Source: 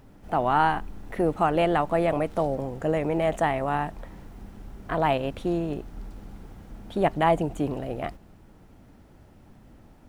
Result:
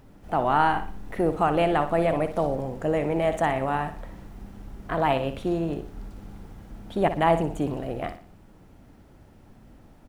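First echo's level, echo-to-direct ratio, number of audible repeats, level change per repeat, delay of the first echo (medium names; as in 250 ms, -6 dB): -10.5 dB, -10.0 dB, 3, -8.5 dB, 60 ms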